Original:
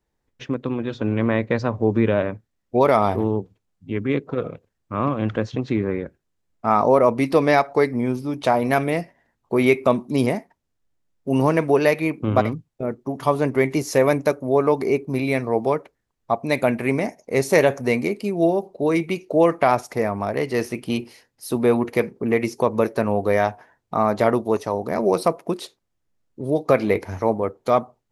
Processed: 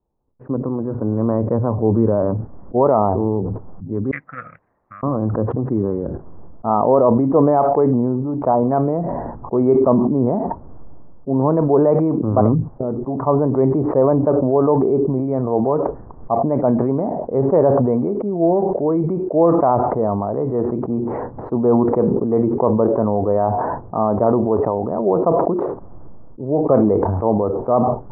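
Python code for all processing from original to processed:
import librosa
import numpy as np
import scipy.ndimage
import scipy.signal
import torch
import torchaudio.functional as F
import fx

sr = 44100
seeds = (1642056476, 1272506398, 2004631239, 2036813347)

y = fx.chain(x, sr, fx.ellip_highpass(hz=1900.0, order=4, stop_db=50),
    fx.high_shelf(hz=6900.0, db=-11.0),
    fx.resample_bad(factor=4, down='none', up='hold'), at=(4.11, 5.03))
y = scipy.signal.sosfilt(scipy.signal.butter(6, 1100.0, 'lowpass', fs=sr, output='sos'), y)
y = fx.sustainer(y, sr, db_per_s=22.0)
y = y * 10.0 ** (1.5 / 20.0)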